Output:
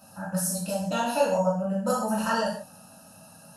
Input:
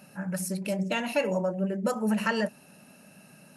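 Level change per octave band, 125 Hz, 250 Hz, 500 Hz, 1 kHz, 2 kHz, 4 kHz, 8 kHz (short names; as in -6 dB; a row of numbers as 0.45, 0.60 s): +1.0, -0.5, +3.0, +7.0, -2.0, +1.5, +7.0 dB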